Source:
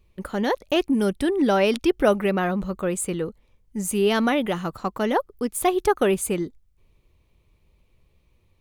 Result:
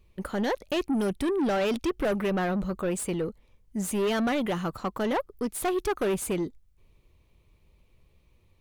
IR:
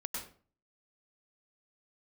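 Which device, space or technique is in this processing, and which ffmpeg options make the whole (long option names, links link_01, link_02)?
saturation between pre-emphasis and de-emphasis: -af "highshelf=frequency=4100:gain=9.5,asoftclip=type=tanh:threshold=-22.5dB,highshelf=frequency=4100:gain=-9.5"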